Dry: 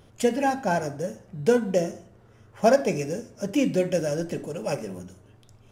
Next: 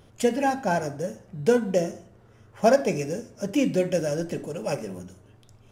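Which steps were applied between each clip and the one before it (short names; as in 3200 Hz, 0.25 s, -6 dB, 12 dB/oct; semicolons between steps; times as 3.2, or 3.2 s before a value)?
nothing audible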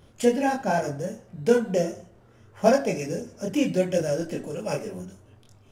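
chorus voices 2, 0.75 Hz, delay 25 ms, depth 4.1 ms; gain +3 dB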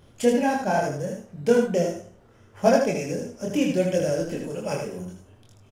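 echo 78 ms -5 dB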